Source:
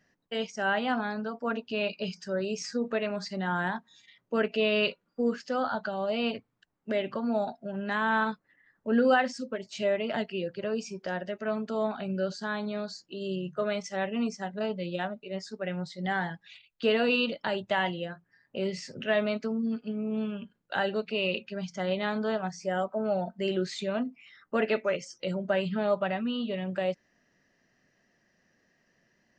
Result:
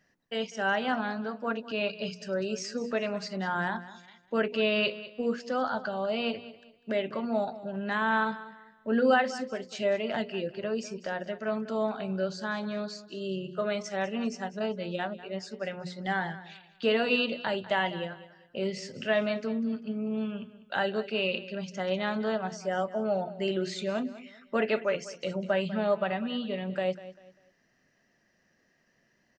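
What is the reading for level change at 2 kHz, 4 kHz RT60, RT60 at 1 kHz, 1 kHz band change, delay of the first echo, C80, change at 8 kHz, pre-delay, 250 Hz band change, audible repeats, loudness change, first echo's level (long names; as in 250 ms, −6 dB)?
0.0 dB, no reverb audible, no reverb audible, 0.0 dB, 197 ms, no reverb audible, 0.0 dB, no reverb audible, −1.0 dB, 2, −0.5 dB, −16.0 dB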